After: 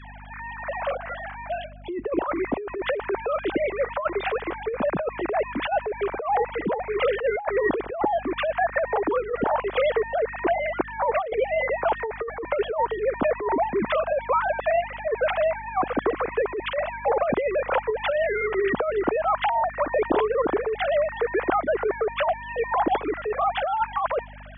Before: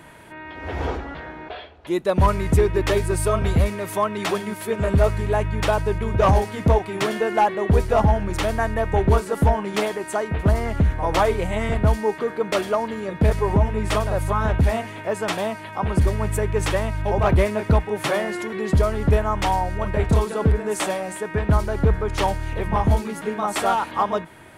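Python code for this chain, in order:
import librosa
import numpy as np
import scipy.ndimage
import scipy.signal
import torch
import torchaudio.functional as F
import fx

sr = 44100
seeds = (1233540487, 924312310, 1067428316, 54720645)

y = fx.sine_speech(x, sr)
y = fx.dynamic_eq(y, sr, hz=1300.0, q=1.1, threshold_db=-27.0, ratio=4.0, max_db=-3)
y = fx.add_hum(y, sr, base_hz=50, snr_db=26)
y = fx.over_compress(y, sr, threshold_db=-23.0, ratio=-1.0)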